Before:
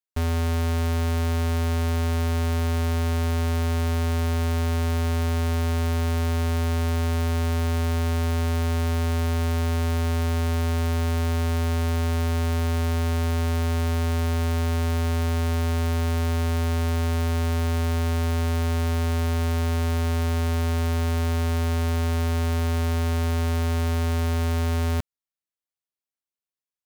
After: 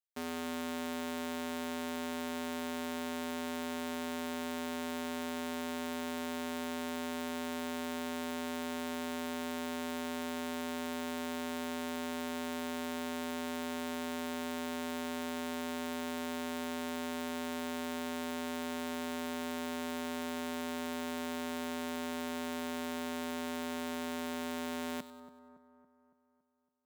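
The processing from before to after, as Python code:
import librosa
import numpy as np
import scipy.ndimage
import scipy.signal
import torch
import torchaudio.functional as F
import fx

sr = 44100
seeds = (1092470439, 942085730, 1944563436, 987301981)

y = scipy.signal.sosfilt(scipy.signal.cheby1(3, 1.0, 200.0, 'highpass', fs=sr, output='sos'), x)
y = fx.echo_split(y, sr, split_hz=1400.0, low_ms=280, high_ms=96, feedback_pct=52, wet_db=-13)
y = y * 10.0 ** (-8.5 / 20.0)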